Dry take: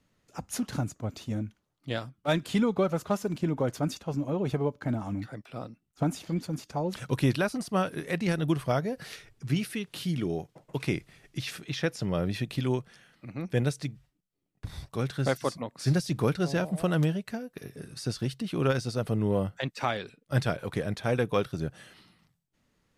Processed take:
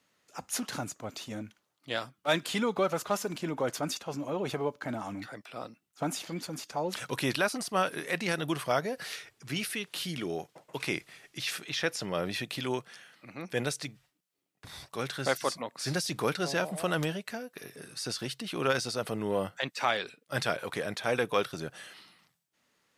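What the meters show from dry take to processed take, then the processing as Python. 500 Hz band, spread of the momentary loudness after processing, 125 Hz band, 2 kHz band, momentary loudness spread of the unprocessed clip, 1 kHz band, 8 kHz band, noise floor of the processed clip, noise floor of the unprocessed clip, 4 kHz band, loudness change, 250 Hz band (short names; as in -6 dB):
-1.5 dB, 13 LU, -10.5 dB, +3.0 dB, 12 LU, +1.5 dB, +4.5 dB, -78 dBFS, -76 dBFS, +4.0 dB, -2.5 dB, -6.0 dB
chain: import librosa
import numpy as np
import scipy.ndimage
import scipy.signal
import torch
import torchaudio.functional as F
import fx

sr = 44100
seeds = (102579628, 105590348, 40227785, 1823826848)

y = fx.highpass(x, sr, hz=750.0, slope=6)
y = fx.transient(y, sr, attack_db=-2, sustain_db=2)
y = y * 10.0 ** (4.5 / 20.0)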